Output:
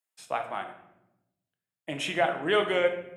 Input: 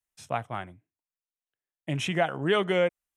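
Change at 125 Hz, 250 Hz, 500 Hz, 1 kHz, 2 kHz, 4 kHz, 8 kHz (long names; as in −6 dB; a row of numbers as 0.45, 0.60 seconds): −11.0, −4.0, 0.0, +1.0, +1.5, +1.0, −1.0 decibels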